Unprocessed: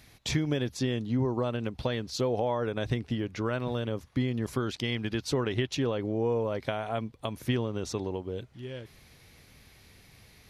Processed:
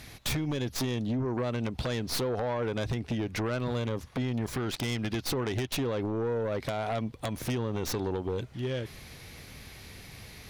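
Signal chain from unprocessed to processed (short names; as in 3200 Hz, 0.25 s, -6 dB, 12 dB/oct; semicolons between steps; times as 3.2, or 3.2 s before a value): tracing distortion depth 0.17 ms; compressor 8:1, threshold -33 dBFS, peak gain reduction 11 dB; sine folder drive 11 dB, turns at -19.5 dBFS; gain -6 dB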